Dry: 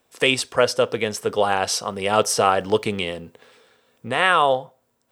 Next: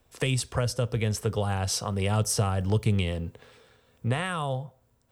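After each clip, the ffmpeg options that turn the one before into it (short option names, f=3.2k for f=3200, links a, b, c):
-filter_complex "[0:a]acrossover=split=170|6100[a][b][c];[a]aemphasis=mode=reproduction:type=riaa[d];[b]acompressor=threshold=-26dB:ratio=6[e];[d][e][c]amix=inputs=3:normalize=0,lowshelf=f=420:g=3,volume=-3dB"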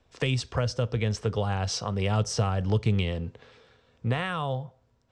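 -af "lowpass=f=6.2k:w=0.5412,lowpass=f=6.2k:w=1.3066"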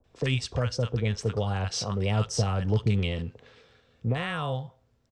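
-filter_complex "[0:a]acrossover=split=940[a][b];[b]adelay=40[c];[a][c]amix=inputs=2:normalize=0"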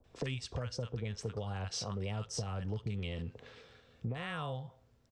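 -af "acompressor=threshold=-36dB:ratio=5"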